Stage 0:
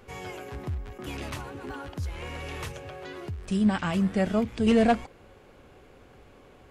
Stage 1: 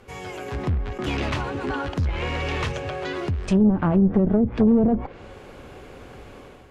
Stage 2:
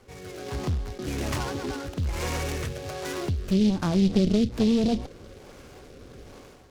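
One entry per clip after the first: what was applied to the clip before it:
one-sided clip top -33 dBFS, bottom -19 dBFS; level rider gain up to 8.5 dB; low-pass that closes with the level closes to 390 Hz, closed at -15 dBFS; trim +2.5 dB
rotary cabinet horn 1.2 Hz; resampled via 11.025 kHz; delay time shaken by noise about 3.6 kHz, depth 0.064 ms; trim -2 dB

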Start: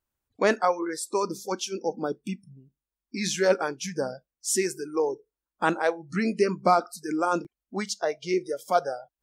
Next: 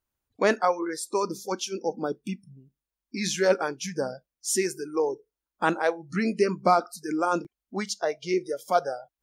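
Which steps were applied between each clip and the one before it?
band-stop 7.9 kHz, Q 14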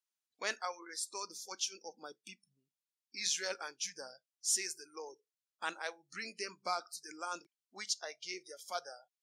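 band-pass filter 5.5 kHz, Q 0.76; trim -2.5 dB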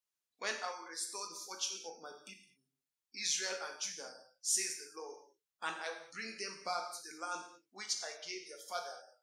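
gated-style reverb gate 250 ms falling, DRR 2.5 dB; trim -2 dB

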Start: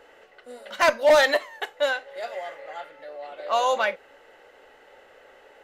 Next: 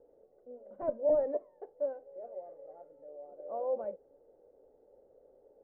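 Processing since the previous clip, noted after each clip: Chebyshev low-pass 530 Hz, order 3; trim -6 dB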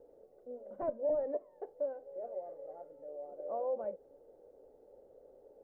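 compression 2:1, threshold -39 dBFS, peak gain reduction 9 dB; trim +3 dB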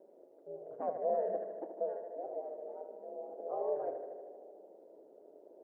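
ladder high-pass 270 Hz, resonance 25%; ring modulator 84 Hz; on a send: tape echo 75 ms, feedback 90%, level -6.5 dB, low-pass 1.3 kHz; on the sum: trim +6.5 dB

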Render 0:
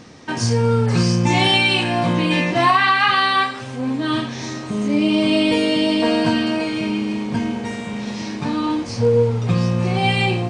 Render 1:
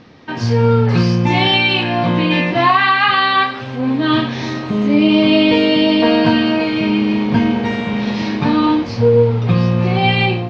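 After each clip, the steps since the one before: low-pass 4.4 kHz 24 dB/octave; level rider; trim -1 dB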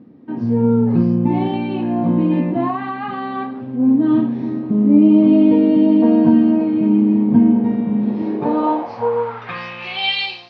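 dynamic bell 850 Hz, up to +6 dB, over -31 dBFS, Q 1.8; band-pass sweep 250 Hz -> 4.6 kHz, 8.02–10.26 s; trim +4.5 dB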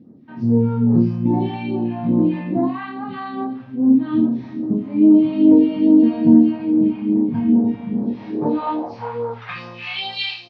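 phase shifter stages 2, 2.4 Hz, lowest notch 310–2700 Hz; on a send: early reflections 26 ms -5.5 dB, 80 ms -10.5 dB; on the sum: trim -2 dB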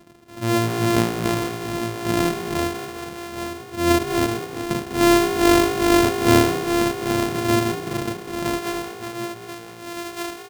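sorted samples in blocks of 128 samples; frequency-shifting echo 198 ms, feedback 35%, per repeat +55 Hz, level -12 dB; trim -4.5 dB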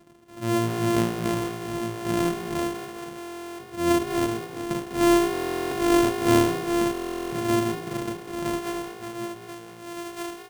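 reverberation RT60 0.20 s, pre-delay 6 ms, DRR 9 dB; buffer glitch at 3.19/5.32/6.92 s, samples 1024, times 16; trim -6 dB

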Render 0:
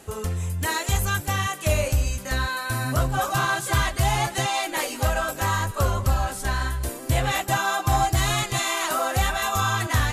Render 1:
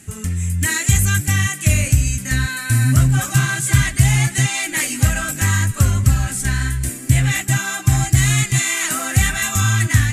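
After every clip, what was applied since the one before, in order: graphic EQ 125/250/500/1000/2000/4000/8000 Hz +11/+7/-11/-10/+9/-4/+11 dB; level rider; trim -1 dB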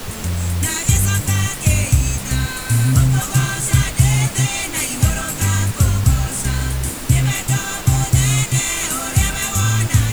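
peaking EQ 1.8 kHz -13.5 dB 0.24 oct; added noise pink -30 dBFS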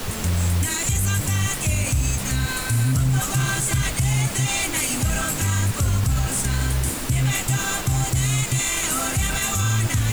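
peak limiter -12.5 dBFS, peak gain reduction 11 dB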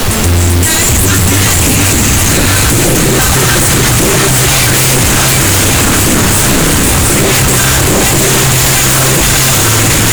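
shuffle delay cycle 1179 ms, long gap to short 1.5:1, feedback 53%, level -4 dB; sine folder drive 12 dB, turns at -8 dBFS; trim +3 dB

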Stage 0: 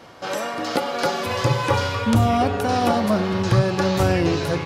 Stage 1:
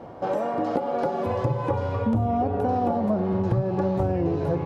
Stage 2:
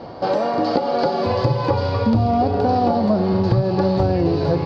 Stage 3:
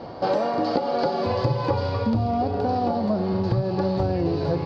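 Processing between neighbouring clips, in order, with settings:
compression 6:1, threshold -26 dBFS, peak gain reduction 13 dB; FFT filter 800 Hz 0 dB, 1.3 kHz -11 dB, 4.7 kHz -23 dB; trim +5.5 dB
resonant low-pass 4.6 kHz, resonance Q 9; feedback echo behind a high-pass 205 ms, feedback 79%, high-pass 2.8 kHz, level -10 dB; trim +6 dB
gain riding; trim -5 dB

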